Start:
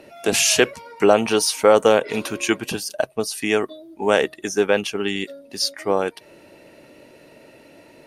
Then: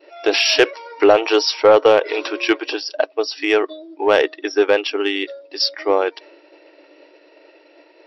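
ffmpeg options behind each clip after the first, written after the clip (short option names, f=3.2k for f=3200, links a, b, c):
-af "agate=range=-33dB:threshold=-42dB:ratio=3:detection=peak,afftfilt=real='re*between(b*sr/4096,290,5700)':imag='im*between(b*sr/4096,290,5700)':win_size=4096:overlap=0.75,acontrast=39,volume=-1dB"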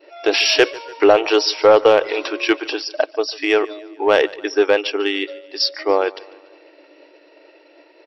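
-af "aecho=1:1:145|290|435|580:0.0841|0.0429|0.0219|0.0112"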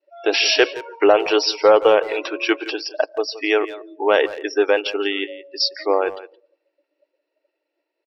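-filter_complex "[0:a]lowshelf=f=160:g=-7.5,afftdn=nr=27:nf=-30,asplit=2[a][b];[b]adelay=170,highpass=300,lowpass=3.4k,asoftclip=type=hard:threshold=-9dB,volume=-15dB[c];[a][c]amix=inputs=2:normalize=0,volume=-1dB"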